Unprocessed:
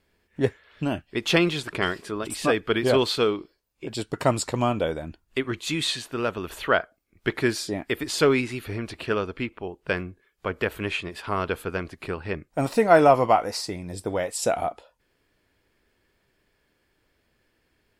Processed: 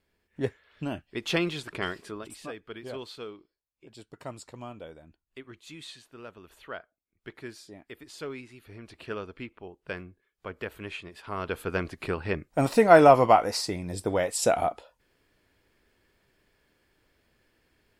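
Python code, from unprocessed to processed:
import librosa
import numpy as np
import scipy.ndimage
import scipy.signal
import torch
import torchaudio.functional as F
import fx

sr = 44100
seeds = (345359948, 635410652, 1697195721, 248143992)

y = fx.gain(x, sr, db=fx.line((2.09, -6.5), (2.52, -18.0), (8.56, -18.0), (9.07, -10.0), (11.22, -10.0), (11.78, 0.5)))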